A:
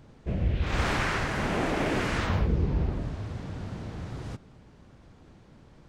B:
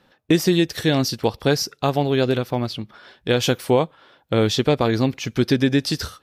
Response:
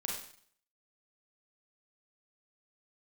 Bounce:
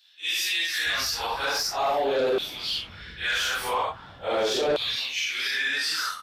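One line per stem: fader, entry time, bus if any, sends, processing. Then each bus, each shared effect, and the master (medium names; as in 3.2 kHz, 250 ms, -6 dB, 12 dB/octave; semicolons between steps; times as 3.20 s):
-14.0 dB, 0.60 s, no send, compression, threshold -30 dBFS, peak gain reduction 9.5 dB
+2.0 dB, 0.00 s, no send, phase randomisation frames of 200 ms; LFO high-pass saw down 0.42 Hz 460–3700 Hz; saturation -15 dBFS, distortion -13 dB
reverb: none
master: peak limiter -19 dBFS, peak gain reduction 6 dB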